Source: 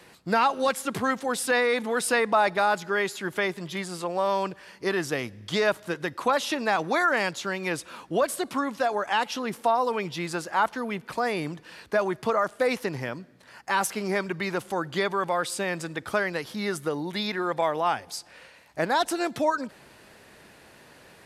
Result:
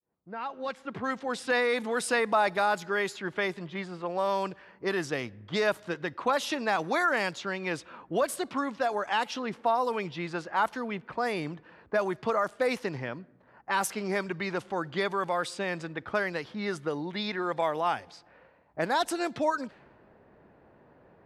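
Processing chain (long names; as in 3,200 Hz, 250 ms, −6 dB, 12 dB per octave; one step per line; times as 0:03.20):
fade in at the beginning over 1.50 s
low-pass that shuts in the quiet parts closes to 850 Hz, open at −21.5 dBFS
level −3 dB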